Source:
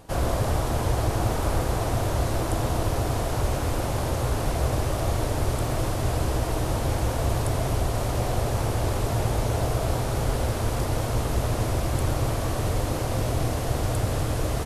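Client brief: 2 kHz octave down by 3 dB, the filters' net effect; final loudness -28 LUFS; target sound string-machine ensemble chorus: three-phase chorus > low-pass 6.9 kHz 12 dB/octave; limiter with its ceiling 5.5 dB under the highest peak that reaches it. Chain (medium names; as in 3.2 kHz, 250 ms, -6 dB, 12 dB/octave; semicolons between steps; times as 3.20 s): peaking EQ 2 kHz -4 dB; peak limiter -16.5 dBFS; three-phase chorus; low-pass 6.9 kHz 12 dB/octave; trim +3 dB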